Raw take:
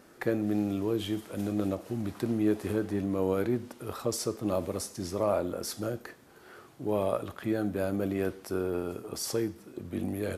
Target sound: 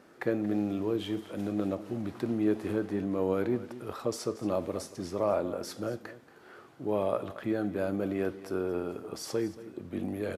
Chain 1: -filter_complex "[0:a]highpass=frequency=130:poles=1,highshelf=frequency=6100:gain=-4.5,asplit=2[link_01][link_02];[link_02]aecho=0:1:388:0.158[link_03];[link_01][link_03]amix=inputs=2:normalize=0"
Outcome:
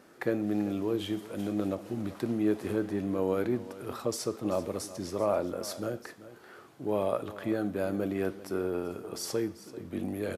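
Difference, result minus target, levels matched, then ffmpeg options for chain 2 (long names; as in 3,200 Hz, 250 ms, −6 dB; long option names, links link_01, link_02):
echo 158 ms late; 8,000 Hz band +4.0 dB
-filter_complex "[0:a]highpass=frequency=130:poles=1,highshelf=frequency=6100:gain=-11.5,asplit=2[link_01][link_02];[link_02]aecho=0:1:230:0.158[link_03];[link_01][link_03]amix=inputs=2:normalize=0"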